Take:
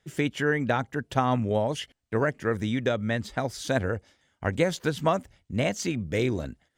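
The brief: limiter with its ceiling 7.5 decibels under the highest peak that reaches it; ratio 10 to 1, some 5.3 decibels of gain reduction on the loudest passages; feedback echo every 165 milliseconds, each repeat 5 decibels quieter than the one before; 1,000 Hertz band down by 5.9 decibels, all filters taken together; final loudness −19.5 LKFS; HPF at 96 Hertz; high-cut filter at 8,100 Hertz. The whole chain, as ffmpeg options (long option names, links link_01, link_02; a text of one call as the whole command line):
ffmpeg -i in.wav -af "highpass=96,lowpass=8100,equalizer=frequency=1000:width_type=o:gain=-8.5,acompressor=threshold=-26dB:ratio=10,alimiter=limit=-23.5dB:level=0:latency=1,aecho=1:1:165|330|495|660|825|990|1155:0.562|0.315|0.176|0.0988|0.0553|0.031|0.0173,volume=14.5dB" out.wav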